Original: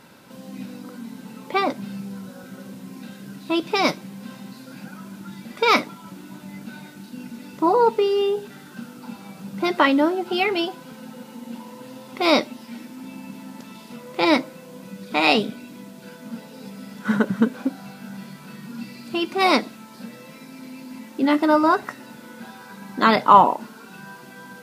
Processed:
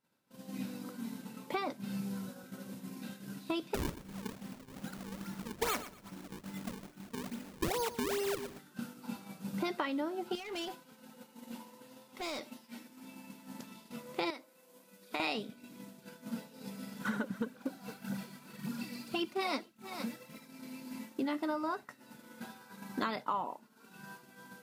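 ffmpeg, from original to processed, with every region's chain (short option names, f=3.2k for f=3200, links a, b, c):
-filter_complex "[0:a]asettb=1/sr,asplit=3[a][b][c];[a]atrim=end=3.744[d];[b]atrim=start=3.74:end=8.59,asetpts=PTS-STARTPTS,afade=t=in:d=0.004:c=qsin,afade=t=out:st=4.846:d=0.004:c=qsin,acrusher=samples=38:mix=1:aa=0.000001:lfo=1:lforange=60.8:lforate=2.4,aecho=1:1:118|236|354:0.2|0.0539|0.0145,atrim=end_sample=213885[e];[c]atrim=start=8.586[f];[d][e]acrossfade=d=0.004:c1=hsin:c2=qsin[g];[g][f]acrossfade=d=0.004:c1=qsin:c2=hsin,asettb=1/sr,asplit=3[h][i][j];[h]atrim=end=10.354[k];[i]atrim=start=10.35:end=13.48,asetpts=PTS-STARTPTS,afade=t=in:d=0.004:c=qsin,afade=t=out:st=3.126:d=0.004:c=qsin,lowshelf=f=270:g=-6.5,acompressor=threshold=-29dB:ratio=6:attack=3.2:release=140:knee=1:detection=peak,volume=31dB,asoftclip=hard,volume=-31dB[l];[j]atrim=start=13.476[m];[k][l]acrossfade=d=0.004:c1=hsin:c2=qsin[n];[n][m]acrossfade=d=0.004:c1=qsin:c2=hsin,asettb=1/sr,asplit=3[o][p][q];[o]atrim=end=14.304[r];[p]atrim=start=14.3:end=15.2,asetpts=PTS-STARTPTS,afade=t=in:d=0.004:c=qsin,afade=t=out:st=0.896:d=0.004:c=qsin,highpass=340,equalizer=f=12k:t=o:w=0.98:g=5,acompressor=threshold=-25dB:ratio=5:attack=3.2:release=140:knee=1:detection=peak[s];[q]atrim=start=15.196[t];[r][s]acrossfade=d=0.004:c1=hsin:c2=qsin[u];[u][t]acrossfade=d=0.004:c1=qsin:c2=hsin,asettb=1/sr,asplit=3[v][w][x];[v]atrim=end=17.014[y];[w]atrim=start=17.01:end=20.47,asetpts=PTS-STARTPTS,afade=t=in:d=0.004:c=qsin,afade=t=out:st=3.456:d=0.004:c=qsin,aphaser=in_gain=1:out_gain=1:delay=4.4:decay=0.48:speed=1.8:type=triangular,aecho=1:1:461:0.0841,atrim=end_sample=152586[z];[x]atrim=start=20.466[aa];[y][z]acrossfade=d=0.004:c1=hsin:c2=qsin[ab];[ab][aa]acrossfade=d=0.004:c1=qsin:c2=hsin,acompressor=threshold=-29dB:ratio=8,agate=range=-33dB:threshold=-33dB:ratio=3:detection=peak,highshelf=f=6.4k:g=5.5,volume=-3.5dB"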